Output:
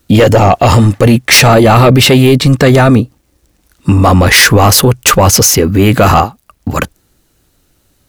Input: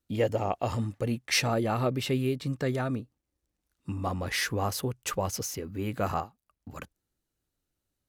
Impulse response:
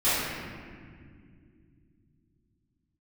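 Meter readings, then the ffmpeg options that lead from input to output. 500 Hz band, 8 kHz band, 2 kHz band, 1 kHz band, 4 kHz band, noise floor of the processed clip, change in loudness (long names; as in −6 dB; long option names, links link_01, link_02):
+22.0 dB, +25.0 dB, +23.5 dB, +23.0 dB, +24.0 dB, −56 dBFS, +23.5 dB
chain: -af "asoftclip=type=tanh:threshold=-13.5dB,apsyclip=30dB,volume=-1.5dB"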